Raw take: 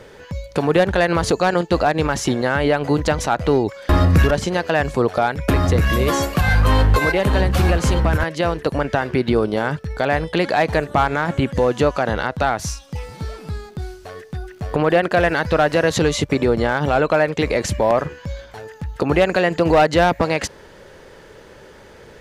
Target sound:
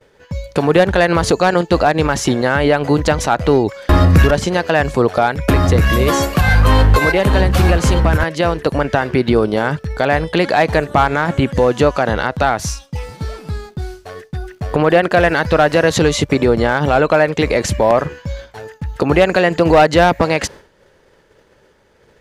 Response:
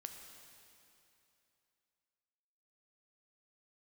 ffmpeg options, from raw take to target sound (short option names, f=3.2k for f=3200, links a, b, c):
-af "agate=range=-33dB:threshold=-33dB:ratio=3:detection=peak,volume=4dB"